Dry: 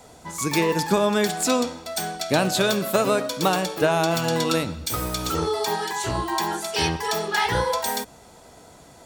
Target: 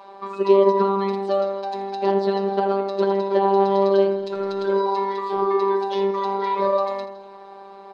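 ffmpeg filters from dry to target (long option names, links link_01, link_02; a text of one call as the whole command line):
ffmpeg -i in.wav -filter_complex "[0:a]acrossover=split=520[link_01][link_02];[link_02]acompressor=threshold=-35dB:ratio=6[link_03];[link_01][link_03]amix=inputs=2:normalize=0,afftfilt=real='hypot(re,im)*cos(PI*b)':imag='0':win_size=1024:overlap=0.75,acrossover=split=220 5100:gain=0.1 1 0.224[link_04][link_05][link_06];[link_04][link_05][link_06]amix=inputs=3:normalize=0,asplit=2[link_07][link_08];[link_08]aecho=0:1:93|186|279|372|465|558|651:0.299|0.173|0.1|0.0582|0.0338|0.0196|0.0114[link_09];[link_07][link_09]amix=inputs=2:normalize=0,asetrate=50274,aresample=44100,adynamicsmooth=sensitivity=1:basefreq=2600,equalizer=frequency=400:width_type=o:width=0.67:gain=7,equalizer=frequency=1000:width_type=o:width=0.67:gain=10,equalizer=frequency=4000:width_type=o:width=0.67:gain=11,volume=4.5dB" out.wav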